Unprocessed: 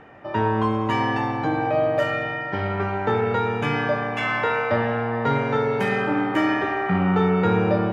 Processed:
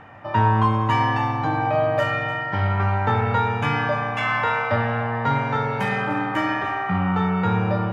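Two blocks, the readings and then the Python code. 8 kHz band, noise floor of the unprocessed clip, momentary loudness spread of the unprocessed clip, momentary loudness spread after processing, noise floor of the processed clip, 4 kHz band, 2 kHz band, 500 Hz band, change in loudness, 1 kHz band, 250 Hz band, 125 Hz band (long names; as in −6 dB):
can't be measured, −30 dBFS, 5 LU, 4 LU, −28 dBFS, +0.5 dB, +1.0 dB, −3.5 dB, +0.5 dB, +3.0 dB, −2.0 dB, +4.0 dB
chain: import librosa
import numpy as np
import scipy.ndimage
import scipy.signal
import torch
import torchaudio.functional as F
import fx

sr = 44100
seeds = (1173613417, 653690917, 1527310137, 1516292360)

p1 = fx.low_shelf(x, sr, hz=150.0, db=-3.0)
p2 = p1 + fx.echo_single(p1, sr, ms=298, db=-15.0, dry=0)
p3 = fx.rider(p2, sr, range_db=4, speed_s=2.0)
y = fx.graphic_eq_15(p3, sr, hz=(100, 400, 1000), db=(9, -9, 4))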